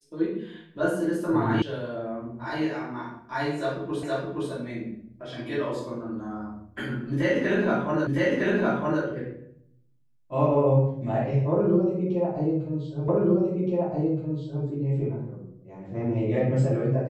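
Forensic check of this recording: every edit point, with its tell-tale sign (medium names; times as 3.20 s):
1.62 s: sound stops dead
4.03 s: repeat of the last 0.47 s
8.07 s: repeat of the last 0.96 s
13.08 s: repeat of the last 1.57 s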